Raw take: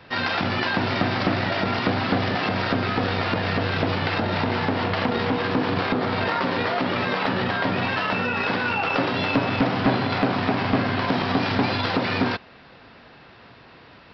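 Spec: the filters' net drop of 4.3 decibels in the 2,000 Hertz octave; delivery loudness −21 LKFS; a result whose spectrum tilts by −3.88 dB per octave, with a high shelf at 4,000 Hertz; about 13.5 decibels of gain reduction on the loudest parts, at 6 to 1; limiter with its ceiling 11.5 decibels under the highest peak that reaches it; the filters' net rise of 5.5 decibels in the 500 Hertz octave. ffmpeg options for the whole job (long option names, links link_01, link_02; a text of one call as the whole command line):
ffmpeg -i in.wav -af "equalizer=frequency=500:width_type=o:gain=7,equalizer=frequency=2000:width_type=o:gain=-8.5,highshelf=frequency=4000:gain=8.5,acompressor=threshold=-30dB:ratio=6,volume=17.5dB,alimiter=limit=-11.5dB:level=0:latency=1" out.wav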